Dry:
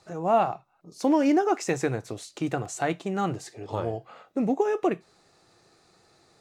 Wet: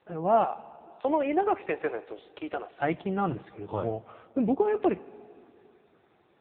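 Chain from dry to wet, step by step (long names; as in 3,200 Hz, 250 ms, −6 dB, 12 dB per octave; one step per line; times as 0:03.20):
0:00.44–0:02.69: high-pass filter 370 Hz 24 dB per octave
convolution reverb RT60 2.8 s, pre-delay 38 ms, DRR 18.5 dB
AMR narrowband 5.9 kbit/s 8,000 Hz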